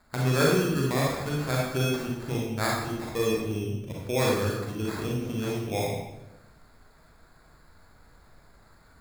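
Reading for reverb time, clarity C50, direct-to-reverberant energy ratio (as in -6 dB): 0.90 s, 0.0 dB, -3.5 dB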